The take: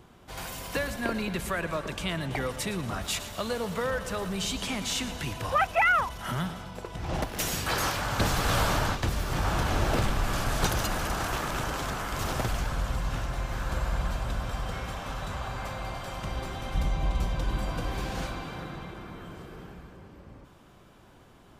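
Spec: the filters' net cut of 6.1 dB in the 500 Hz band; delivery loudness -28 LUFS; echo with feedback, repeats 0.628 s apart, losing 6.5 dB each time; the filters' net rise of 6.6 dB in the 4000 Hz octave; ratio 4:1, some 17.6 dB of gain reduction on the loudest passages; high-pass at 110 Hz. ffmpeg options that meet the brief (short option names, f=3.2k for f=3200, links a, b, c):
-af "highpass=110,equalizer=f=500:t=o:g=-8,equalizer=f=4k:t=o:g=8.5,acompressor=threshold=-42dB:ratio=4,aecho=1:1:628|1256|1884|2512|3140|3768:0.473|0.222|0.105|0.0491|0.0231|0.0109,volume=13dB"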